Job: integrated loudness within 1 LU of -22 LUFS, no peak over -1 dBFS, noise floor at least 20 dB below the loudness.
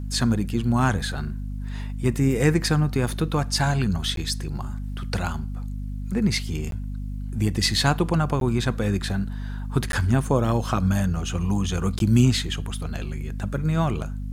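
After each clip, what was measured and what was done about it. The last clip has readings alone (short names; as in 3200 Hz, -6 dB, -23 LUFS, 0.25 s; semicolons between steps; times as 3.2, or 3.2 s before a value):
dropouts 5; longest dropout 12 ms; hum 50 Hz; harmonics up to 250 Hz; hum level -28 dBFS; loudness -24.5 LUFS; peak -6.5 dBFS; loudness target -22.0 LUFS
-> interpolate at 4.16/6.71/8.4/9.92/11.99, 12 ms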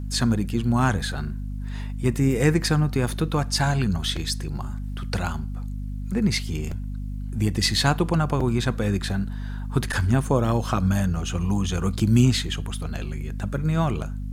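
dropouts 0; hum 50 Hz; harmonics up to 250 Hz; hum level -28 dBFS
-> notches 50/100/150/200/250 Hz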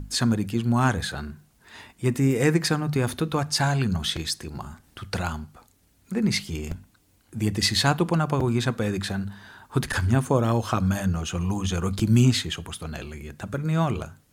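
hum none; loudness -25.0 LUFS; peak -7.0 dBFS; loudness target -22.0 LUFS
-> gain +3 dB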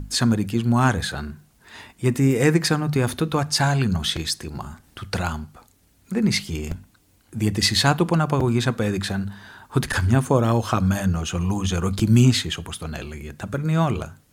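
loudness -22.0 LUFS; peak -4.0 dBFS; noise floor -59 dBFS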